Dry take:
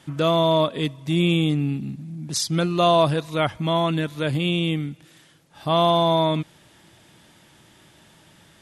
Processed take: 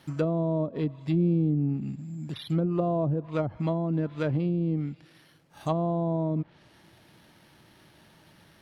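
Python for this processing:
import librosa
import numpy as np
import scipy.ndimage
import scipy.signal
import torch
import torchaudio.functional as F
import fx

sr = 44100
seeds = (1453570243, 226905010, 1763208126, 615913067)

y = fx.dynamic_eq(x, sr, hz=3100.0, q=1.7, threshold_db=-41.0, ratio=4.0, max_db=5)
y = np.repeat(scipy.signal.resample_poly(y, 1, 6), 6)[:len(y)]
y = fx.env_lowpass_down(y, sr, base_hz=420.0, full_db=-17.0)
y = F.gain(torch.from_numpy(y), -3.0).numpy()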